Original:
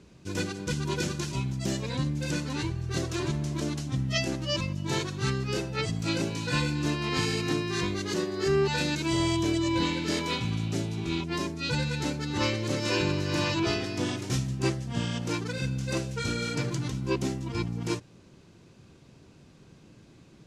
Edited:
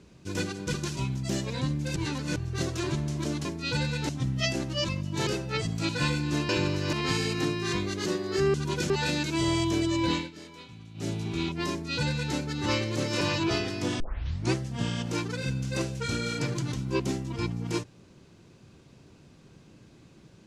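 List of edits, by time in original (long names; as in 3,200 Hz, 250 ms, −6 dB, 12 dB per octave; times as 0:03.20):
0:00.74–0:01.10: move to 0:08.62
0:02.32–0:02.72: reverse
0:04.99–0:05.51: remove
0:06.13–0:06.41: remove
0:09.87–0:10.82: duck −17 dB, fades 0.16 s
0:11.43–0:12.07: duplicate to 0:03.81
0:12.93–0:13.37: move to 0:07.01
0:14.16: tape start 0.52 s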